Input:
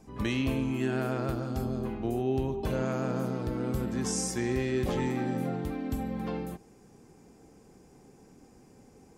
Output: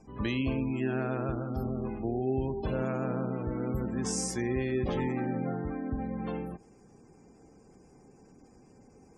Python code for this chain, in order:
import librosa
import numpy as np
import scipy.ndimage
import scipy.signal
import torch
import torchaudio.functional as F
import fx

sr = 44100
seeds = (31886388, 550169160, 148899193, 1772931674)

y = fx.high_shelf_res(x, sr, hz=2400.0, db=-10.5, q=1.5, at=(5.46, 6.01))
y = fx.spec_gate(y, sr, threshold_db=-30, keep='strong')
y = F.gain(torch.from_numpy(y), -1.0).numpy()